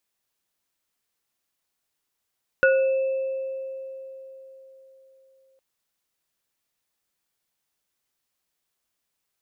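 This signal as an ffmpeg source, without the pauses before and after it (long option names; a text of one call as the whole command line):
ffmpeg -f lavfi -i "aevalsrc='0.168*pow(10,-3*t/4.03)*sin(2*PI*532*t)+0.211*pow(10,-3*t/0.37)*sin(2*PI*1460*t)+0.0299*pow(10,-3*t/1.95)*sin(2*PI*2630*t)':duration=2.96:sample_rate=44100" out.wav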